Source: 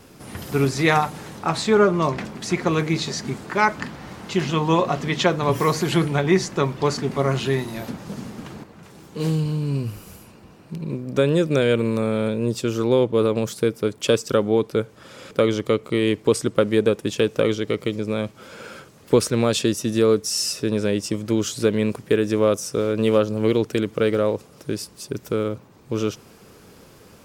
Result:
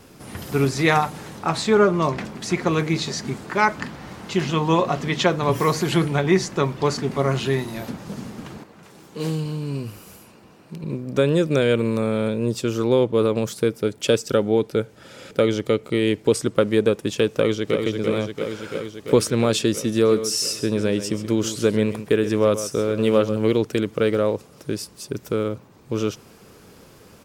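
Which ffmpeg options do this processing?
-filter_complex "[0:a]asettb=1/sr,asplit=3[a][b][c];[a]atrim=end=8.584[d];[b]atrim=start=8.58:end=10.84,asetpts=PTS-STARTPTS,afade=t=in:d=0.004:c=qsin,afade=t=out:st=2.256:d=0.004:c=qsin,lowshelf=f=120:g=-11[e];[c]atrim=start=10.836[f];[d][e]acrossfade=d=0.004:c1=hsin:c2=qsin[g];[g][f]acrossfade=d=0.004:c1=qsin:c2=hsin,asettb=1/sr,asplit=3[h][i][j];[h]atrim=end=13.784[k];[i]atrim=start=13.78:end=16.34,asetpts=PTS-STARTPTS,afade=t=in:d=0.004:c=qsin,afade=t=out:st=2.556:d=0.004:c=qsin,bandreject=f=1.1k:w=5.6[l];[j]atrim=start=16.336[m];[k][l]acrossfade=d=0.004:c1=hsin:c2=qsin[n];[n][m]acrossfade=d=0.004:c1=qsin:c2=hsin,asplit=2[o][p];[p]afade=t=in:st=17.3:d=0.01,afade=t=out:st=17.85:d=0.01,aecho=0:1:340|680|1020|1360|1700|2040|2380|2720|3060|3400|3740|4080:0.530884|0.424708|0.339766|0.271813|0.21745|0.17396|0.139168|0.111335|0.0890676|0.0712541|0.0570033|0.0456026[q];[o][q]amix=inputs=2:normalize=0,asettb=1/sr,asplit=3[r][s][t];[r]atrim=end=19.924[u];[s]atrim=start=19.92:end=23.37,asetpts=PTS-STARTPTS,afade=t=in:d=0.004:c=qsin,afade=t=out:st=3.446:d=0.004:c=qsin,aecho=1:1:132:0.251,atrim=end_sample=152145[v];[t]atrim=start=23.366[w];[u][v]acrossfade=d=0.004:c1=hsin:c2=qsin[x];[x][w]acrossfade=d=0.004:c1=qsin:c2=hsin"

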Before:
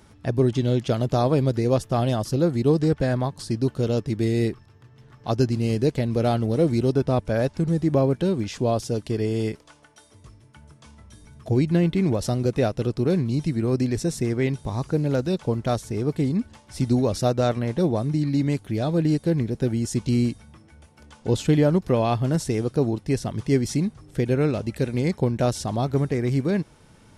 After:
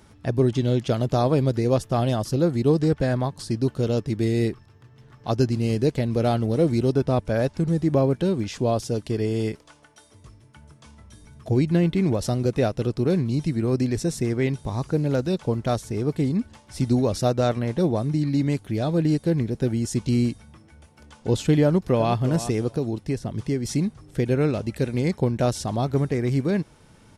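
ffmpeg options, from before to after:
-filter_complex "[0:a]asplit=2[a][b];[b]afade=t=in:st=21.64:d=0.01,afade=t=out:st=22.15:d=0.01,aecho=0:1:350|700:0.251189|0.0376783[c];[a][c]amix=inputs=2:normalize=0,asettb=1/sr,asplit=3[d][e][f];[d]atrim=end=22.734[g];[e]atrim=start=22.73:end=23.65,asetpts=PTS-STARTPTS,afade=t=in:d=0.004:c=qsin,afade=t=out:st=0.916:d=0.004:c=qsin,acrossover=split=670|1900[h][i][j];[h]acompressor=threshold=-22dB:ratio=4[k];[i]acompressor=threshold=-43dB:ratio=4[l];[j]acompressor=threshold=-45dB:ratio=4[m];[k][l][m]amix=inputs=3:normalize=0[n];[f]atrim=start=23.646[o];[g][n]acrossfade=d=0.004:c1=hsin:c2=qsin[p];[p][o]acrossfade=d=0.004:c1=qsin:c2=hsin"

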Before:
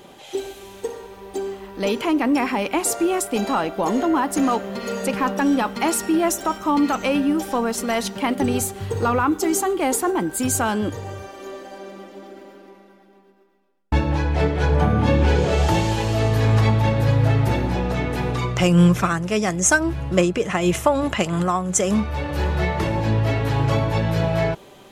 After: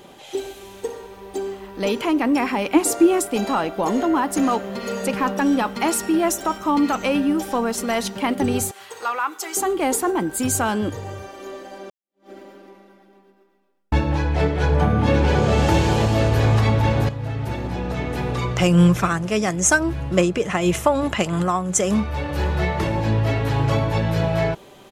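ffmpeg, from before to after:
-filter_complex "[0:a]asettb=1/sr,asplit=3[a][b][c];[a]atrim=end=2.744[d];[b]atrim=start=2.74:end=3.29,asetpts=PTS-STARTPTS,afade=t=in:d=0.004:c=qsin,afade=t=out:st=0.546:d=0.004:c=qsin,equalizer=f=300:w=3.6:g=11.5[e];[c]atrim=start=3.286[f];[d][e]acrossfade=d=0.004:c1=hsin:c2=qsin[g];[g][f]acrossfade=d=0.004:c1=qsin:c2=hsin,asettb=1/sr,asplit=3[h][i][j];[h]atrim=end=8.714[k];[i]atrim=start=8.71:end=9.57,asetpts=PTS-STARTPTS,afade=t=in:d=0.004:c=qsin,afade=t=out:st=0.856:d=0.004:c=qsin,highpass=940[l];[j]atrim=start=9.566[m];[k][l]acrossfade=d=0.004:c1=hsin:c2=qsin[n];[n][m]acrossfade=d=0.004:c1=qsin:c2=hsin,asplit=2[o][p];[p]afade=t=in:st=14.53:d=0.01,afade=t=out:st=15.51:d=0.01,aecho=0:1:540|1080|1620|2160|2700|3240|3780|4320|4860|5400|5940|6480:0.630957|0.44167|0.309169|0.216418|0.151493|0.106045|0.0742315|0.0519621|0.0363734|0.0254614|0.017823|0.0124761[q];[o][q]amix=inputs=2:normalize=0,asplit=3[r][s][t];[r]atrim=end=11.9,asetpts=PTS-STARTPTS,afade=t=out:st=11.896:d=0.004:c=hsin[u];[s]atrim=start=11.9:end=17.09,asetpts=PTS-STARTPTS,afade=t=in:d=0.4:c=exp,afade=t=out:st=5.186:d=0.004:c=hsin:silence=0.223872[v];[t]atrim=start=17.09,asetpts=PTS-STARTPTS,afade=t=in:d=1.42:silence=0.223872[w];[u][v][w]concat=n=3:v=0:a=1"

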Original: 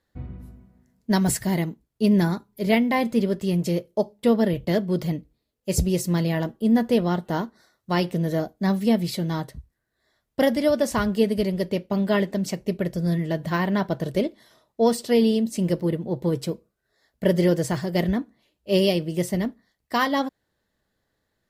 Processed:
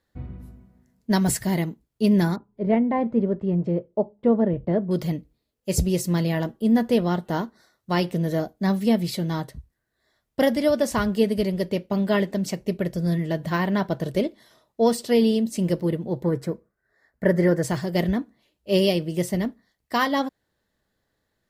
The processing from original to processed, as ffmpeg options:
-filter_complex "[0:a]asettb=1/sr,asplit=3[a][b][c];[a]atrim=end=2.364[d];[b]atrim=start=2.36:end=4.91,asetpts=PTS-STARTPTS,afade=t=in:d=0.004:c=qsin,afade=t=out:st=2.546:d=0.004:c=qsin,lowpass=1.1k[e];[c]atrim=start=4.906[f];[d][e]acrossfade=d=0.004:c1=hsin:c2=qsin[g];[g][f]acrossfade=d=0.004:c1=qsin:c2=hsin,asettb=1/sr,asplit=3[h][i][j];[h]atrim=end=16.234[k];[i]atrim=start=16.23:end=17.63,asetpts=PTS-STARTPTS,afade=t=in:d=0.004:c=qsin,afade=t=out:st=1.396:d=0.004:c=qsin,highshelf=f=2.3k:t=q:w=3:g=-7.5[l];[j]atrim=start=17.626[m];[k][l]acrossfade=d=0.004:c1=hsin:c2=qsin[n];[n][m]acrossfade=d=0.004:c1=qsin:c2=hsin"

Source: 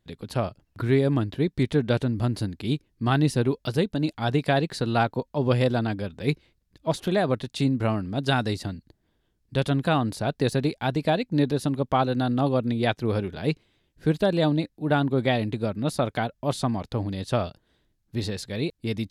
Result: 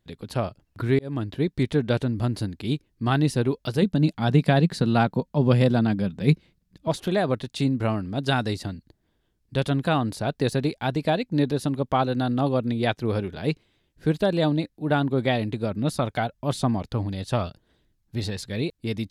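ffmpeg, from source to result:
-filter_complex "[0:a]asettb=1/sr,asplit=3[a][b][c];[a]atrim=end=3.824[d];[b]atrim=start=3.82:end=6.88,asetpts=PTS-STARTPTS,afade=t=in:d=0.004:c=qsin,afade=t=out:st=3.056:d=0.004:c=qsin,equalizer=f=180:t=o:w=0.77:g=11.5[e];[c]atrim=start=6.876[f];[d][e]acrossfade=d=0.004:c1=hsin:c2=qsin[g];[g][f]acrossfade=d=0.004:c1=qsin:c2=hsin,asettb=1/sr,asplit=3[h][i][j];[h]atrim=end=15.714[k];[i]atrim=start=15.71:end=18.62,asetpts=PTS-STARTPTS,afade=t=in:d=0.004:c=qsin,afade=t=out:st=2.906:d=0.004:c=qsin,aphaser=in_gain=1:out_gain=1:delay=1.5:decay=0.28:speed=1:type=triangular[l];[j]atrim=start=18.616[m];[k][l]acrossfade=d=0.004:c1=hsin:c2=qsin[n];[n][m]acrossfade=d=0.004:c1=qsin:c2=hsin,asplit=2[o][p];[o]atrim=end=0.99,asetpts=PTS-STARTPTS,afade=t=out:st=0.986:d=0.004:c=hsin[q];[p]atrim=start=0.99,asetpts=PTS-STARTPTS,afade=t=in:d=0.45:c=qsin[r];[q][r]concat=n=2:v=0:a=1"

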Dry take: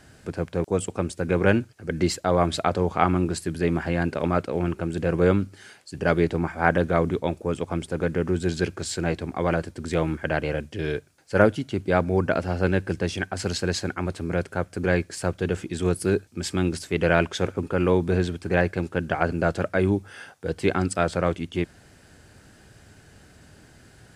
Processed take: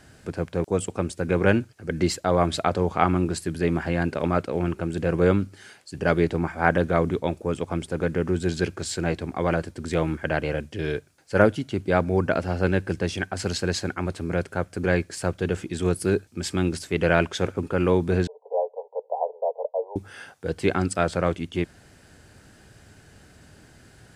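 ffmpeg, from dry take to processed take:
-filter_complex "[0:a]asettb=1/sr,asplit=3[a][b][c];[a]atrim=end=18.274[d];[b]atrim=start=18.27:end=19.96,asetpts=PTS-STARTPTS,afade=t=in:d=0.004:c=qsin,afade=t=out:st=1.686:d=0.004:c=qsin,asuperpass=centerf=660:order=20:qfactor=1.2[e];[c]atrim=start=19.956[f];[d][e]acrossfade=d=0.004:c1=hsin:c2=qsin[g];[g][f]acrossfade=d=0.004:c1=qsin:c2=hsin"

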